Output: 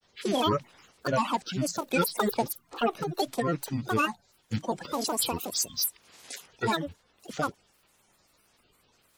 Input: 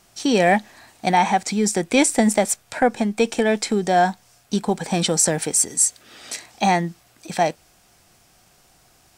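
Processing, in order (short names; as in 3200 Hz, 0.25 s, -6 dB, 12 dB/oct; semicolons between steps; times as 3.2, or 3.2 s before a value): bin magnitudes rounded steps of 30 dB; grains, spray 11 ms, pitch spread up and down by 12 st; gain -7.5 dB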